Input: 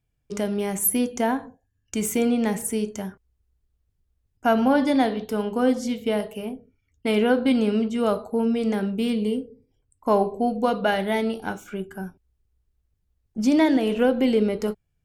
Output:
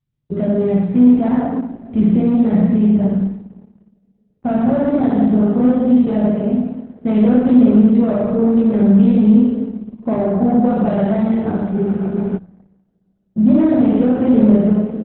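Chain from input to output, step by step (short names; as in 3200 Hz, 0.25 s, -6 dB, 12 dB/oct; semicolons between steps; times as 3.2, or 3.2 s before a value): comb 1.6 ms, depth 33%; two-slope reverb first 0.87 s, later 3.3 s, from -20 dB, DRR -4.5 dB; compressor 5:1, threshold -14 dBFS, peak gain reduction 6 dB; sample leveller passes 3; band-pass 170 Hz, Q 1.5; flutter echo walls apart 9.7 m, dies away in 0.53 s; spectral freeze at 11.75, 0.61 s; gain +5 dB; Opus 8 kbps 48000 Hz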